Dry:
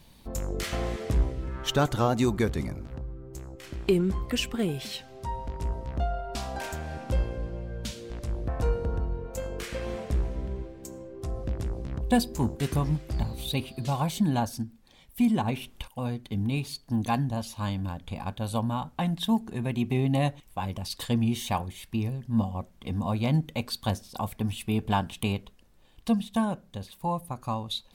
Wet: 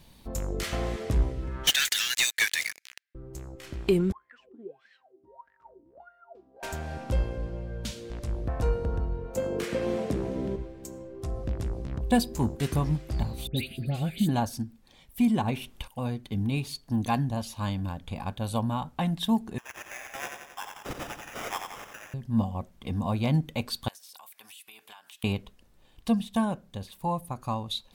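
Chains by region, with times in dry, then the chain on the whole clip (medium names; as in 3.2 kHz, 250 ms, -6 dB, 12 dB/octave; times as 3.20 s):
1.67–3.15 s: Chebyshev high-pass 1.7 kHz, order 6 + waveshaping leveller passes 5
4.12–6.63 s: low-pass 8.9 kHz + wah-wah 1.6 Hz 300–1800 Hz, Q 18
9.35–10.56 s: high-pass 110 Hz + peaking EQ 300 Hz +8.5 dB 2.3 oct + three bands compressed up and down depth 40%
13.47–14.29 s: peaking EQ 5.4 kHz +11 dB 0.39 oct + static phaser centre 2.4 kHz, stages 4 + phase dispersion highs, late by 99 ms, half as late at 2.1 kHz
19.58–22.14 s: high-pass 1 kHz 24 dB/octave + sample-rate reducer 4.3 kHz + feedback delay 89 ms, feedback 57%, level -6 dB
23.88–25.24 s: high-pass 1.3 kHz + treble shelf 11 kHz +11.5 dB + compression 12:1, threshold -45 dBFS
whole clip: none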